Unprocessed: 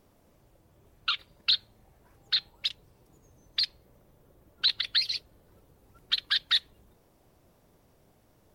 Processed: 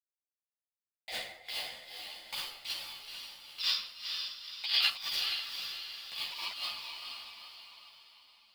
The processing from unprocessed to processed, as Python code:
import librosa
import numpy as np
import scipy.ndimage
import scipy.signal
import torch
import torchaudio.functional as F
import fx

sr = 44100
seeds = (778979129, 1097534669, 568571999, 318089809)

y = fx.bass_treble(x, sr, bass_db=6, treble_db=-13, at=(1.11, 2.38))
y = np.where(np.abs(y) >= 10.0 ** (-30.5 / 20.0), y, 0.0)
y = fx.rev_plate(y, sr, seeds[0], rt60_s=0.81, hf_ratio=0.65, predelay_ms=0, drr_db=1.0)
y = fx.over_compress(y, sr, threshold_db=-33.0, ratio=-1.0)
y = fx.peak_eq(y, sr, hz=3000.0, db=12.0, octaves=1.4, at=(3.6, 4.89))
y = fx.echo_diffused(y, sr, ms=463, feedback_pct=47, wet_db=-5.0)
y = y * np.sin(2.0 * np.pi * 670.0 * np.arange(len(y)) / sr)
y = fx.ensemble(y, sr)